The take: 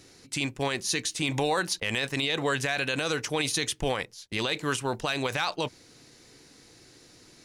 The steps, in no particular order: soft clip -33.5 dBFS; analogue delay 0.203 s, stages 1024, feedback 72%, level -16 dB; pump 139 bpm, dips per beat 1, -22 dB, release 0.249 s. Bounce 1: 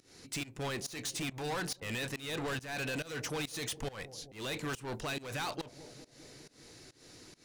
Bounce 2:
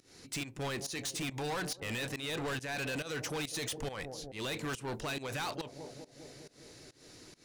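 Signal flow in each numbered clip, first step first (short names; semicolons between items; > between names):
soft clip > analogue delay > pump; analogue delay > pump > soft clip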